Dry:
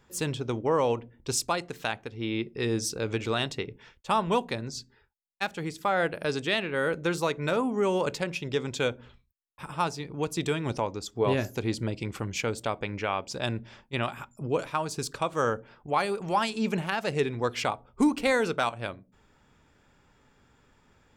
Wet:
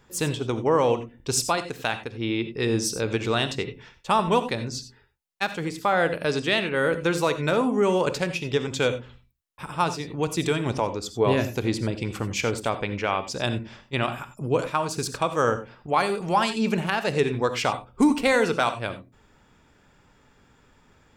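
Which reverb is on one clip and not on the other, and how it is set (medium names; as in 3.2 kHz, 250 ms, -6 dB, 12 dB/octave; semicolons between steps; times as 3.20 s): gated-style reverb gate 110 ms rising, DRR 11 dB; trim +4 dB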